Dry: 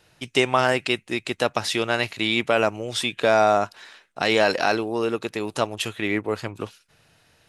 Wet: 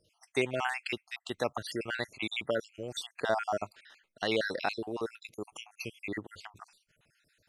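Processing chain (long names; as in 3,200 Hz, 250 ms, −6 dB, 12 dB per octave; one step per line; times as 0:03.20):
time-frequency cells dropped at random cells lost 58%
level −8.5 dB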